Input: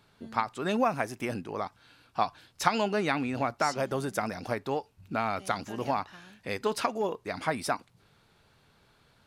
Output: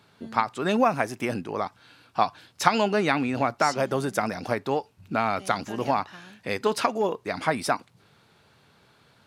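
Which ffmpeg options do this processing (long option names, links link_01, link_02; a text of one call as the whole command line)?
ffmpeg -i in.wav -af "highpass=93,highshelf=frequency=9800:gain=-3.5,volume=5dB" out.wav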